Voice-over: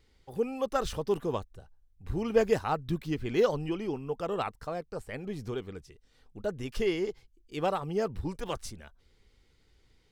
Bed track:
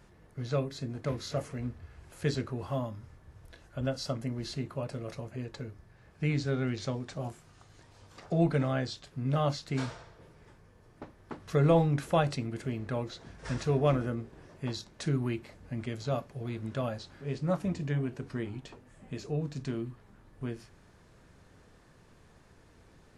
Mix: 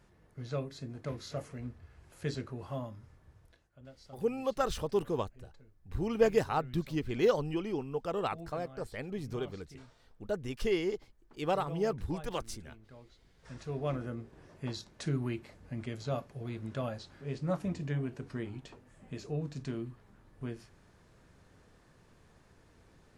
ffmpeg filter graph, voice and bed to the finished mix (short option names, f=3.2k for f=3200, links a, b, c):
-filter_complex "[0:a]adelay=3850,volume=-1.5dB[a];[1:a]volume=12.5dB,afade=t=out:st=3.29:d=0.4:silence=0.16788,afade=t=in:st=13.29:d=1.21:silence=0.125893[b];[a][b]amix=inputs=2:normalize=0"